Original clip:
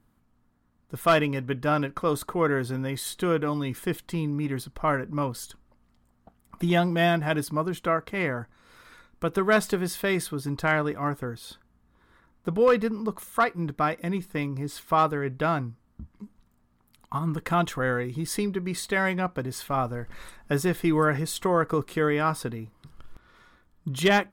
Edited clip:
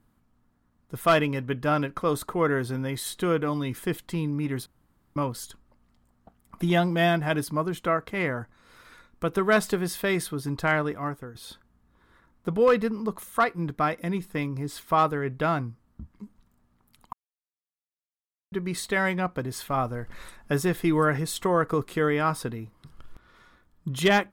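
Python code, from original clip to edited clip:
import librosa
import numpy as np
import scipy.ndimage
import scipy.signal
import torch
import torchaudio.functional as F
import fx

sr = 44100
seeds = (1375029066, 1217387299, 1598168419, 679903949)

y = fx.edit(x, sr, fx.room_tone_fill(start_s=4.66, length_s=0.5),
    fx.fade_out_to(start_s=10.65, length_s=0.7, curve='qsin', floor_db=-11.5),
    fx.silence(start_s=17.13, length_s=1.39), tone=tone)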